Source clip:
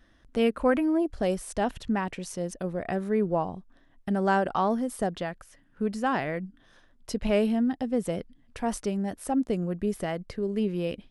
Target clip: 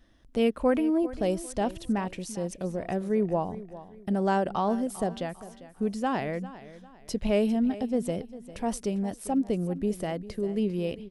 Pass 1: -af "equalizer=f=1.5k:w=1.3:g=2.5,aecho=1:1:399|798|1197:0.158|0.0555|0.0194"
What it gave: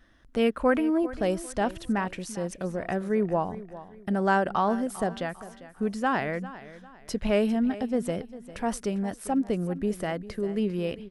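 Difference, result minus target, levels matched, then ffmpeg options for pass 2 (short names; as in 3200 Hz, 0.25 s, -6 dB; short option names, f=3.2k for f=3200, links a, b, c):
2000 Hz band +6.0 dB
-af "equalizer=f=1.5k:w=1.3:g=-6,aecho=1:1:399|798|1197:0.158|0.0555|0.0194"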